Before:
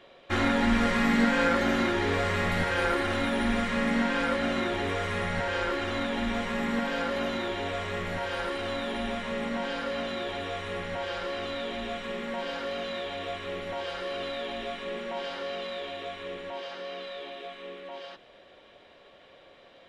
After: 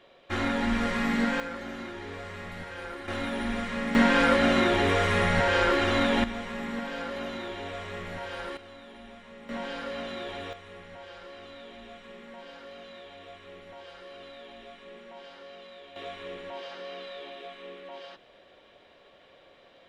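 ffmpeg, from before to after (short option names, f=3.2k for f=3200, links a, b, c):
-af "asetnsamples=n=441:p=0,asendcmd='1.4 volume volume -12.5dB;3.08 volume volume -4dB;3.95 volume volume 6dB;6.24 volume volume -5dB;8.57 volume volume -15.5dB;9.49 volume volume -3.5dB;10.53 volume volume -12dB;15.96 volume volume -2dB',volume=-3dB"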